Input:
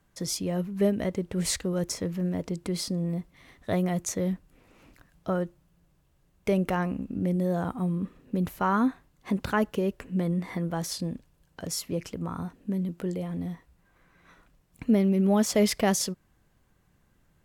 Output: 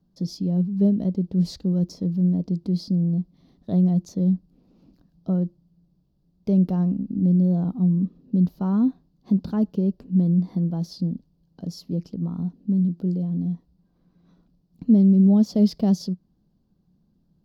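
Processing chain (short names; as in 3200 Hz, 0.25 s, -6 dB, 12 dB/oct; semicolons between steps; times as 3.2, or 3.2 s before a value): EQ curve 120 Hz 0 dB, 180 Hz +13 dB, 490 Hz -2 dB, 720 Hz -3 dB, 2100 Hz -21 dB, 4700 Hz +1 dB, 8400 Hz -22 dB, 14000 Hz -10 dB; gain -3.5 dB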